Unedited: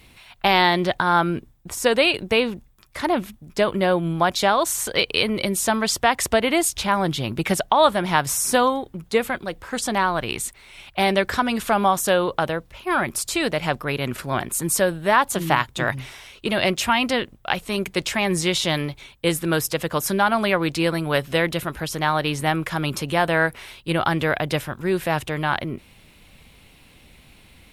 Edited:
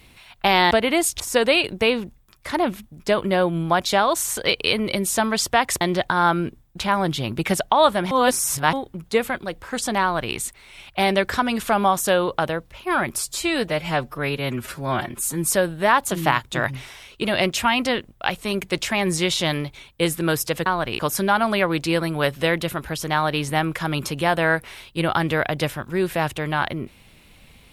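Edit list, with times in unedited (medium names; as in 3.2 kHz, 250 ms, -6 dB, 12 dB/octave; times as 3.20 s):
0.71–1.70 s: swap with 6.31–6.80 s
8.11–8.73 s: reverse
10.02–10.35 s: copy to 19.90 s
13.18–14.70 s: stretch 1.5×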